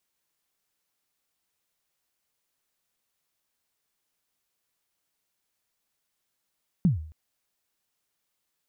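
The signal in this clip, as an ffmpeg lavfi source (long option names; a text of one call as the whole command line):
ffmpeg -f lavfi -i "aevalsrc='0.188*pow(10,-3*t/0.52)*sin(2*PI*(200*0.133/log(78/200)*(exp(log(78/200)*min(t,0.133)/0.133)-1)+78*max(t-0.133,0)))':duration=0.27:sample_rate=44100" out.wav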